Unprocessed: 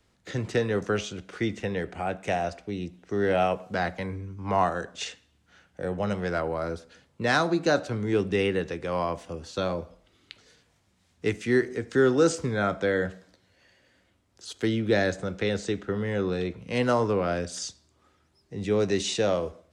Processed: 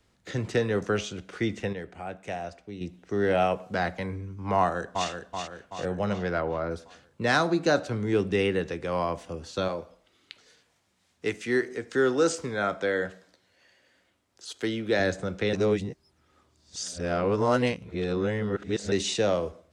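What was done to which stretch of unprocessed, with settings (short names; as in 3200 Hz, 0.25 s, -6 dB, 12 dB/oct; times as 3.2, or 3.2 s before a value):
1.73–2.81 gain -7 dB
4.57–5.09 echo throw 0.38 s, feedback 55%, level -6 dB
6.09–6.7 LPF 6100 Hz -> 2800 Hz
9.68–15 low shelf 200 Hz -11.5 dB
15.53–18.92 reverse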